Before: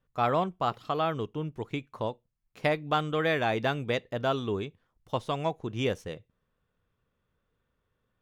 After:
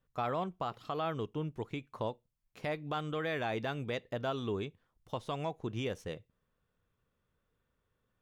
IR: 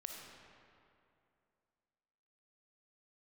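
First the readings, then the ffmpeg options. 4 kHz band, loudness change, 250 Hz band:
-7.5 dB, -7.0 dB, -6.0 dB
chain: -af "alimiter=limit=-22.5dB:level=0:latency=1:release=151,volume=-2.5dB"

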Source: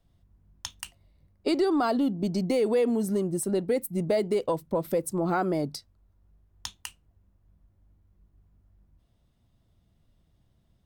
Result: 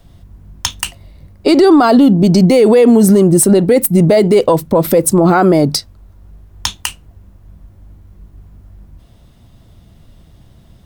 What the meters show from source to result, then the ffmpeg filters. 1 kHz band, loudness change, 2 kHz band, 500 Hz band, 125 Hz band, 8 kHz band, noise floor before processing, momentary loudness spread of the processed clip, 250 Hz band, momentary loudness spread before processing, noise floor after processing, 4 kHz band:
+15.5 dB, +17.0 dB, +16.0 dB, +16.0 dB, +20.0 dB, +20.5 dB, -68 dBFS, 15 LU, +18.5 dB, 17 LU, -45 dBFS, +18.0 dB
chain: -filter_complex "[0:a]acrossover=split=1700[a][b];[b]asoftclip=type=tanh:threshold=-26dB[c];[a][c]amix=inputs=2:normalize=0,alimiter=level_in=24dB:limit=-1dB:release=50:level=0:latency=1,volume=-1dB"

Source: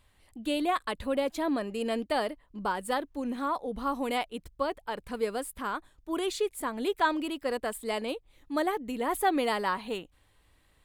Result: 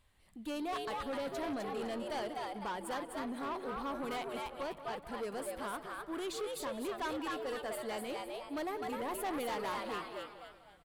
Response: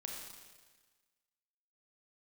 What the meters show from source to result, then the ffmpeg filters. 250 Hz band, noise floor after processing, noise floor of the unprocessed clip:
-8.5 dB, -60 dBFS, -66 dBFS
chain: -filter_complex "[0:a]asplit=2[a][b];[b]asplit=4[c][d][e][f];[c]adelay=254,afreqshift=130,volume=-4.5dB[g];[d]adelay=508,afreqshift=260,volume=-14.1dB[h];[e]adelay=762,afreqshift=390,volume=-23.8dB[i];[f]adelay=1016,afreqshift=520,volume=-33.4dB[j];[g][h][i][j]amix=inputs=4:normalize=0[k];[a][k]amix=inputs=2:normalize=0,asoftclip=type=tanh:threshold=-28.5dB,asplit=2[l][m];[m]adelay=188,lowpass=f=3.5k:p=1,volume=-13dB,asplit=2[n][o];[o]adelay=188,lowpass=f=3.5k:p=1,volume=0.48,asplit=2[p][q];[q]adelay=188,lowpass=f=3.5k:p=1,volume=0.48,asplit=2[r][s];[s]adelay=188,lowpass=f=3.5k:p=1,volume=0.48,asplit=2[t][u];[u]adelay=188,lowpass=f=3.5k:p=1,volume=0.48[v];[n][p][r][t][v]amix=inputs=5:normalize=0[w];[l][w]amix=inputs=2:normalize=0,volume=-5.5dB"

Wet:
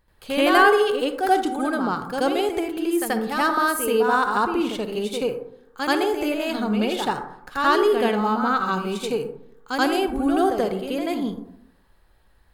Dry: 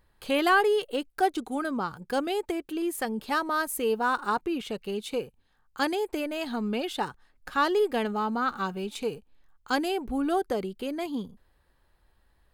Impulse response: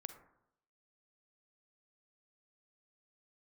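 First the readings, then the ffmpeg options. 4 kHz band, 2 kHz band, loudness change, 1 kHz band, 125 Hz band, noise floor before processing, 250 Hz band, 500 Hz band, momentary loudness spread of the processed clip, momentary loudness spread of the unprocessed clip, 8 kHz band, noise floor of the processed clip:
+6.5 dB, +6.5 dB, +6.5 dB, +7.0 dB, +7.0 dB, -67 dBFS, +7.0 dB, +6.5 dB, 10 LU, 9 LU, +6.0 dB, -58 dBFS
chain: -filter_complex "[0:a]asplit=2[a][b];[1:a]atrim=start_sample=2205,adelay=82[c];[b][c]afir=irnorm=-1:irlink=0,volume=11dB[d];[a][d]amix=inputs=2:normalize=0,volume=-1dB"

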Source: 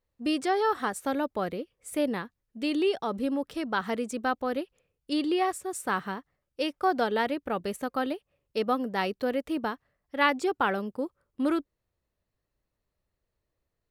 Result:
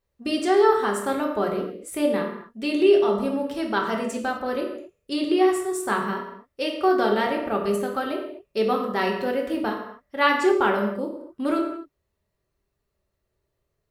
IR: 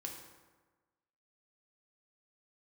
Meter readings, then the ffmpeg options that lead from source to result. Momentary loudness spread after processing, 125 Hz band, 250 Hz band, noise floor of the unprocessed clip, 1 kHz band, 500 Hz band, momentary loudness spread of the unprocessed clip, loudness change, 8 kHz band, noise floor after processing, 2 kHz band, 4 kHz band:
13 LU, n/a, +4.5 dB, -83 dBFS, +4.5 dB, +8.0 dB, 10 LU, +6.0 dB, +4.0 dB, -78 dBFS, +4.0 dB, +4.0 dB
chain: -filter_complex "[1:a]atrim=start_sample=2205,afade=t=out:st=0.37:d=0.01,atrim=end_sample=16758,asetrate=52920,aresample=44100[a];[0:a][a]afir=irnorm=-1:irlink=0,volume=8.5dB"

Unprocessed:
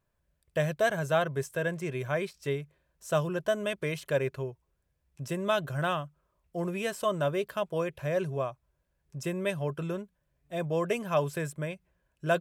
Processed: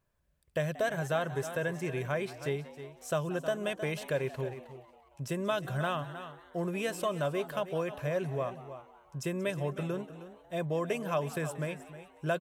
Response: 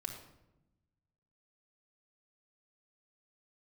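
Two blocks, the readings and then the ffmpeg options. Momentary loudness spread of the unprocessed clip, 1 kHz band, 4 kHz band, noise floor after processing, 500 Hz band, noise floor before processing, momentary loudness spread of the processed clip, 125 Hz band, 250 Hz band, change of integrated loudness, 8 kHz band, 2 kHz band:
10 LU, -3.0 dB, -2.5 dB, -62 dBFS, -3.0 dB, -77 dBFS, 13 LU, -2.0 dB, -1.5 dB, -2.5 dB, -1.0 dB, -3.0 dB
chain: -filter_complex "[0:a]asplit=2[a][b];[b]aecho=0:1:312:0.188[c];[a][c]amix=inputs=2:normalize=0,acompressor=threshold=-30dB:ratio=2,asplit=2[d][e];[e]asplit=5[f][g][h][i][j];[f]adelay=182,afreqshift=110,volume=-18dB[k];[g]adelay=364,afreqshift=220,volume=-22.9dB[l];[h]adelay=546,afreqshift=330,volume=-27.8dB[m];[i]adelay=728,afreqshift=440,volume=-32.6dB[n];[j]adelay=910,afreqshift=550,volume=-37.5dB[o];[k][l][m][n][o]amix=inputs=5:normalize=0[p];[d][p]amix=inputs=2:normalize=0"

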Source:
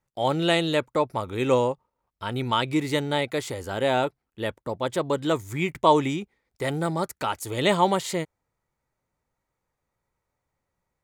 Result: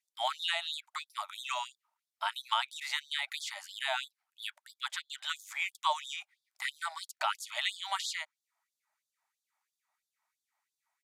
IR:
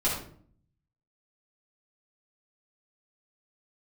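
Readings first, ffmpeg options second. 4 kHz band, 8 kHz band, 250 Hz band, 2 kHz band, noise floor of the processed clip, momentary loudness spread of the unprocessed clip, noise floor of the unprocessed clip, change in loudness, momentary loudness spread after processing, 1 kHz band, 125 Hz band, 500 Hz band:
-2.5 dB, -5.0 dB, under -40 dB, -4.5 dB, under -85 dBFS, 11 LU, -82 dBFS, -10.0 dB, 10 LU, -10.0 dB, under -40 dB, -23.0 dB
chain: -filter_complex "[0:a]acrossover=split=1300|6000[a][b][c];[a]acompressor=threshold=-33dB:ratio=4[d];[b]acompressor=threshold=-32dB:ratio=4[e];[c]acompressor=threshold=-54dB:ratio=4[f];[d][e][f]amix=inputs=3:normalize=0,aresample=32000,aresample=44100,afftfilt=real='re*gte(b*sr/1024,590*pow(3400/590,0.5+0.5*sin(2*PI*3*pts/sr)))':imag='im*gte(b*sr/1024,590*pow(3400/590,0.5+0.5*sin(2*PI*3*pts/sr)))':win_size=1024:overlap=0.75,volume=1.5dB"

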